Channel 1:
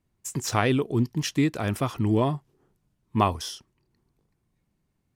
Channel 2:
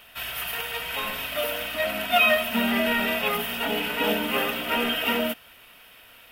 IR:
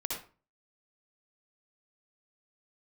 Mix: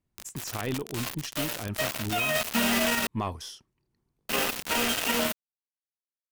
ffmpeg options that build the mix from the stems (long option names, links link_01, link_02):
-filter_complex "[0:a]aeval=exprs='0.531*(cos(1*acos(clip(val(0)/0.531,-1,1)))-cos(1*PI/2))+0.0168*(cos(8*acos(clip(val(0)/0.531,-1,1)))-cos(8*PI/2))':channel_layout=same,volume=-6dB[link_01];[1:a]acrusher=bits=3:mix=0:aa=0.000001,volume=0dB,asplit=3[link_02][link_03][link_04];[link_02]atrim=end=3.07,asetpts=PTS-STARTPTS,afade=type=out:start_time=3.066:duration=0.004:curve=hsin[link_05];[link_03]atrim=start=3.07:end=4.29,asetpts=PTS-STARTPTS,volume=0[link_06];[link_04]atrim=start=4.29,asetpts=PTS-STARTPTS,afade=type=in:duration=0.004:curve=hsin[link_07];[link_05][link_06][link_07]concat=n=3:v=0:a=1[link_08];[link_01][link_08]amix=inputs=2:normalize=0,alimiter=limit=-19.5dB:level=0:latency=1:release=24"